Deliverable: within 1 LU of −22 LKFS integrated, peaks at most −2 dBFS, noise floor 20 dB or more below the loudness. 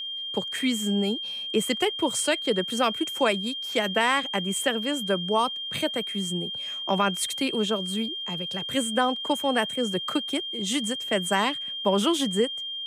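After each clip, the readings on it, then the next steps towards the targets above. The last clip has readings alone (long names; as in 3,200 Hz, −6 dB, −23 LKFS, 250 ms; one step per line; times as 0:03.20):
crackle rate 50 per second; interfering tone 3,200 Hz; level of the tone −31 dBFS; integrated loudness −26.0 LKFS; sample peak −10.5 dBFS; target loudness −22.0 LKFS
→ click removal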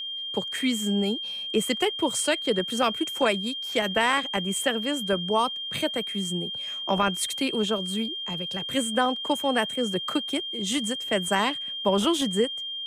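crackle rate 0.078 per second; interfering tone 3,200 Hz; level of the tone −31 dBFS
→ notch filter 3,200 Hz, Q 30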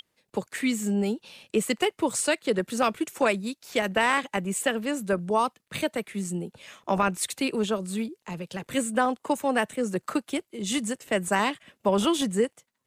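interfering tone none found; integrated loudness −27.5 LKFS; sample peak −11.0 dBFS; target loudness −22.0 LKFS
→ level +5.5 dB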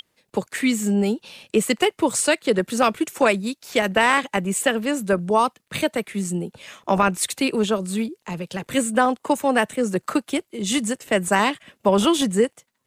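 integrated loudness −22.0 LKFS; sample peak −5.5 dBFS; background noise floor −72 dBFS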